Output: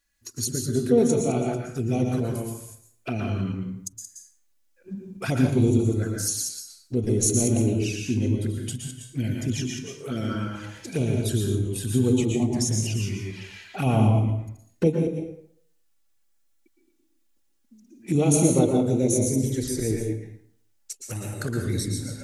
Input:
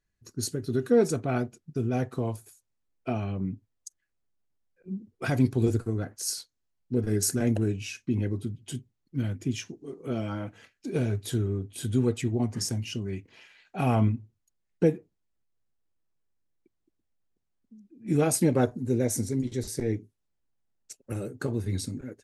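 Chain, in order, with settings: reverse delay 0.11 s, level -7.5 dB; high shelf 4200 Hz +6.5 dB; envelope flanger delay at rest 3.6 ms, full sweep at -23 dBFS; plate-style reverb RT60 0.6 s, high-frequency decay 0.65×, pre-delay 0.105 s, DRR 1.5 dB; mismatched tape noise reduction encoder only; gain +2 dB

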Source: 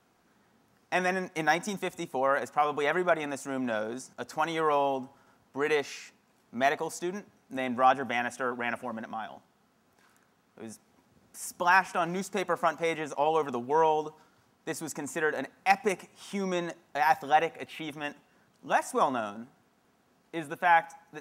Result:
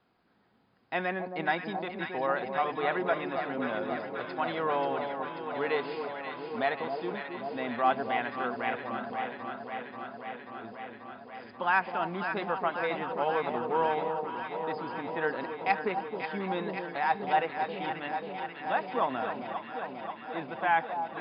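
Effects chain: brick-wall FIR low-pass 5100 Hz; on a send: echo with dull and thin repeats by turns 0.268 s, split 970 Hz, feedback 88%, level -6 dB; on the sum: gain -3.5 dB

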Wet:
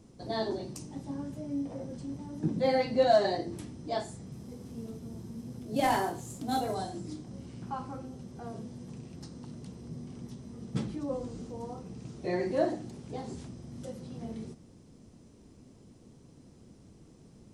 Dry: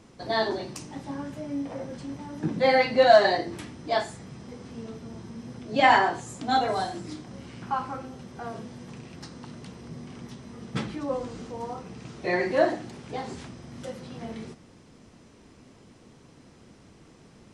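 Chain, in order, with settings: 4.32–6.74 CVSD 64 kbps; bell 1800 Hz -13.5 dB 3 oct

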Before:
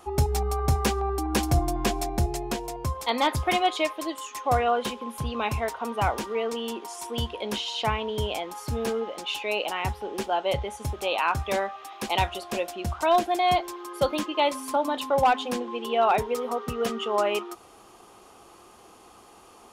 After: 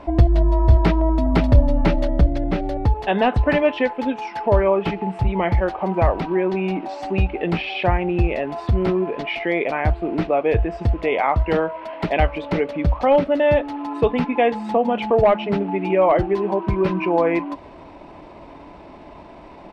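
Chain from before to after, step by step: low shelf 140 Hz +7 dB; in parallel at +3 dB: compressor, threshold -31 dBFS, peak gain reduction 17 dB; on the sum: pitch shift -3.5 st; air absorption 360 m; gain +4 dB

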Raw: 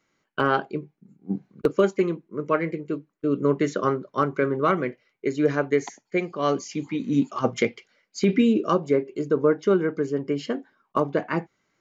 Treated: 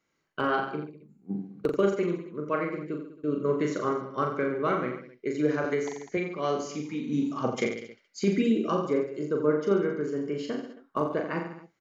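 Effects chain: reverse bouncing-ball echo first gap 40 ms, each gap 1.15×, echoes 5; 5.64–6.17 three-band squash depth 70%; gain -6.5 dB

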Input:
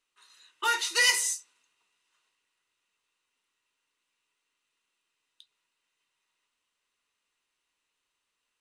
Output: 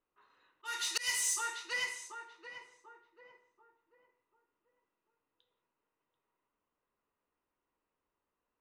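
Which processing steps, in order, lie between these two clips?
low-pass opened by the level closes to 850 Hz, open at -26.5 dBFS; on a send: tape echo 0.738 s, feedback 41%, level -8.5 dB, low-pass 1200 Hz; on the sum: non-linear reverb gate 0.23 s falling, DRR 9 dB; auto swell 0.604 s; dynamic EQ 450 Hz, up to -6 dB, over -59 dBFS, Q 0.8; in parallel at -10.5 dB: wavefolder -35.5 dBFS; on the sum: gain +2 dB

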